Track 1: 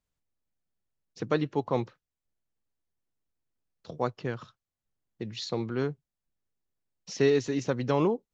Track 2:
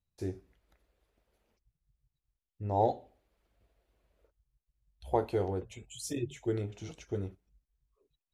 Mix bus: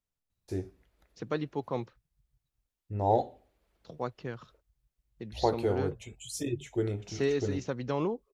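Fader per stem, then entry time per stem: -5.5 dB, +2.0 dB; 0.00 s, 0.30 s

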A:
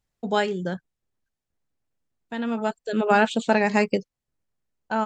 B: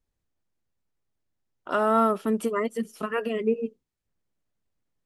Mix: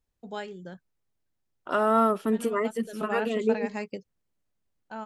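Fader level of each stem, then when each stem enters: -13.5 dB, -0.5 dB; 0.00 s, 0.00 s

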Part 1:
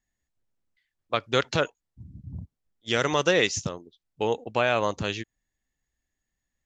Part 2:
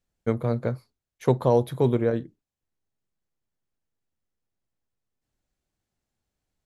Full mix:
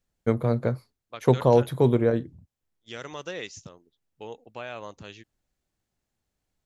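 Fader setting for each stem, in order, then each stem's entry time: -14.0 dB, +1.5 dB; 0.00 s, 0.00 s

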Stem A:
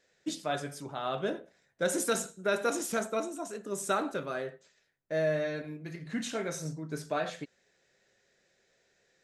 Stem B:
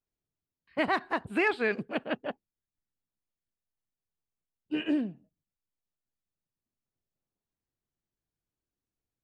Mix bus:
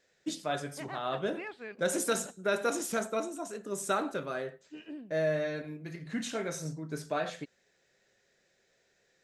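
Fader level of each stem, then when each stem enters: -0.5 dB, -15.5 dB; 0.00 s, 0.00 s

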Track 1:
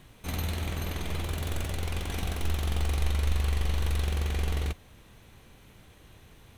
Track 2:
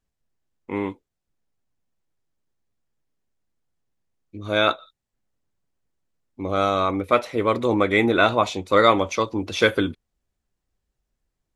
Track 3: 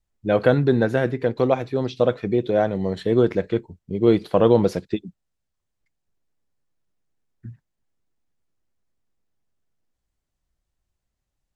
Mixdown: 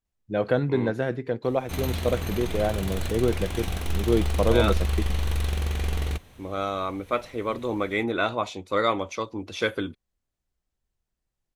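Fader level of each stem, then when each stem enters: +2.0 dB, -7.5 dB, -6.0 dB; 1.45 s, 0.00 s, 0.05 s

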